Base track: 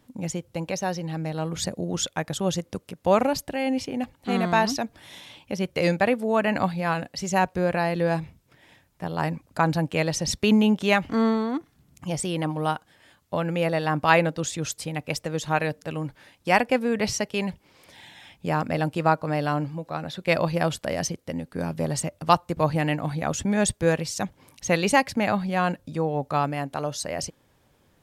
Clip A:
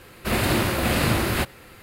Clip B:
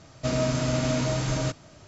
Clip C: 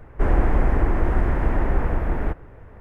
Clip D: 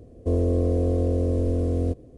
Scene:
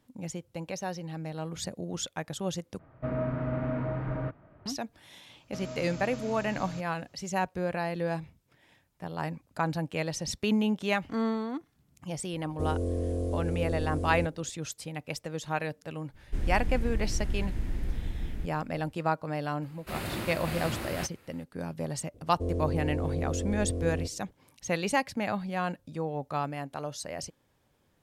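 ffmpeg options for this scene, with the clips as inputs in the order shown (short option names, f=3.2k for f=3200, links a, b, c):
-filter_complex "[2:a]asplit=2[a][b];[4:a]asplit=2[c][d];[0:a]volume=-7.5dB[e];[a]lowpass=f=1.8k:w=0.5412,lowpass=f=1.8k:w=1.3066[f];[c]aemphasis=mode=production:type=50kf[g];[3:a]firequalizer=gain_entry='entry(200,0);entry(400,-9);entry(630,-14);entry(1100,-16);entry(1700,-8);entry(3800,12)':delay=0.05:min_phase=1[h];[e]asplit=2[i][j];[i]atrim=end=2.794[k];[f]atrim=end=1.87,asetpts=PTS-STARTPTS,volume=-5.5dB[l];[j]atrim=start=4.656[m];[b]atrim=end=1.87,asetpts=PTS-STARTPTS,volume=-15.5dB,afade=t=in:d=0.004:c=hsin,afade=t=out:st=1.866:d=0.004:c=hsin,adelay=233289S[n];[g]atrim=end=2.17,asetpts=PTS-STARTPTS,volume=-8.5dB,afade=t=in:d=0.004:c=hsin,afade=t=out:st=2.166:d=0.004:c=hsin,adelay=12330[o];[h]atrim=end=2.8,asetpts=PTS-STARTPTS,volume=-10.5dB,afade=t=in:d=0.02,afade=t=out:st=2.78:d=0.02,adelay=16130[p];[1:a]atrim=end=1.82,asetpts=PTS-STARTPTS,volume=-13.5dB,afade=t=in:d=0.004:c=hsin,afade=t=out:st=1.816:d=0.004:c=hsin,adelay=19620[q];[d]atrim=end=2.17,asetpts=PTS-STARTPTS,volume=-9dB,afade=t=in:d=0.004:c=hsin,afade=t=out:st=2.166:d=0.004:c=hsin,adelay=22140[r];[k][l]acrossfade=d=0.004:c1=hsin:c2=hsin[s];[s][m]acrossfade=d=0.004:c1=hsin:c2=hsin[t];[t][n][o][p][q][r]amix=inputs=6:normalize=0"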